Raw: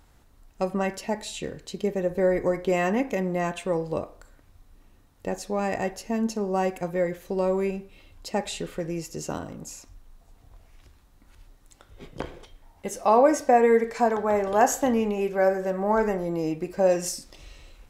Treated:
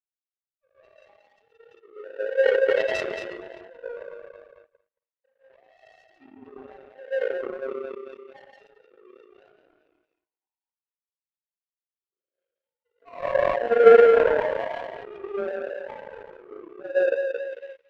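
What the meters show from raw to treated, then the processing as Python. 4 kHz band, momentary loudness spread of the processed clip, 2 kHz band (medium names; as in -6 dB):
no reading, 23 LU, +2.0 dB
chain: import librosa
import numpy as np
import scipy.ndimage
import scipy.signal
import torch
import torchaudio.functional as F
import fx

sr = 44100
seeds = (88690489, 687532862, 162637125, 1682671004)

y = fx.sine_speech(x, sr)
y = fx.hpss(y, sr, part='percussive', gain_db=-16)
y = fx.echo_thinned(y, sr, ms=223, feedback_pct=28, hz=250.0, wet_db=-4)
y = fx.rev_gated(y, sr, seeds[0], gate_ms=190, shape='rising', drr_db=-7.5)
y = fx.power_curve(y, sr, exponent=2.0)
y = fx.sustainer(y, sr, db_per_s=27.0)
y = y * librosa.db_to_amplitude(-5.5)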